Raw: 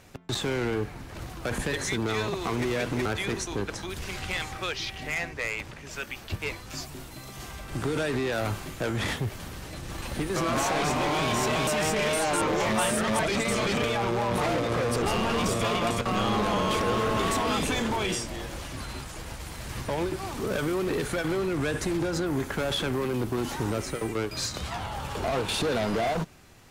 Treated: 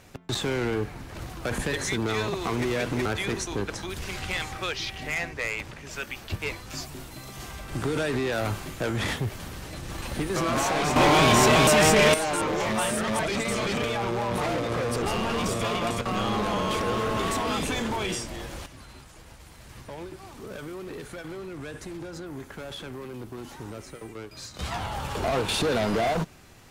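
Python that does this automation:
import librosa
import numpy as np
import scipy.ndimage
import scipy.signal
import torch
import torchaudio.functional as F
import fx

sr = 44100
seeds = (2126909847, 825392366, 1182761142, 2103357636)

y = fx.gain(x, sr, db=fx.steps((0.0, 1.0), (10.96, 8.0), (12.14, -1.0), (18.66, -10.0), (24.59, 2.0)))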